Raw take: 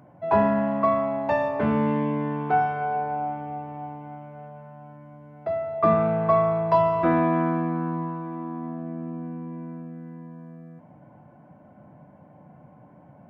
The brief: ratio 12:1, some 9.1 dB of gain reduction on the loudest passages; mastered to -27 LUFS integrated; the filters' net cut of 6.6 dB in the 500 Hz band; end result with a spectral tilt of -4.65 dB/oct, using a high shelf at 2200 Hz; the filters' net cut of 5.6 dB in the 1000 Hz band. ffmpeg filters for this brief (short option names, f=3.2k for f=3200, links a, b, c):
-af "equalizer=f=500:t=o:g=-8,equalizer=f=1k:t=o:g=-5,highshelf=f=2.2k:g=4.5,acompressor=threshold=-29dB:ratio=12,volume=8dB"